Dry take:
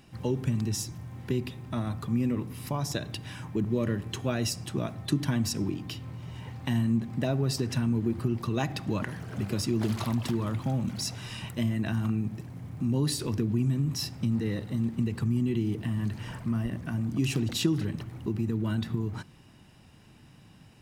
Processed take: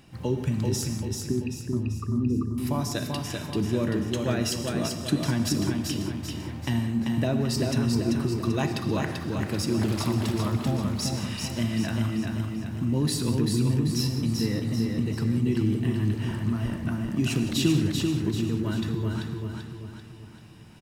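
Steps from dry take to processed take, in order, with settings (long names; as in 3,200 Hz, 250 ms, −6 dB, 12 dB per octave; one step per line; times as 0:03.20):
0:01.01–0:02.58: spectral envelope exaggerated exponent 3
repeating echo 389 ms, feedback 46%, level −4 dB
reverb whose tail is shaped and stops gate 210 ms flat, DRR 8 dB
level +1.5 dB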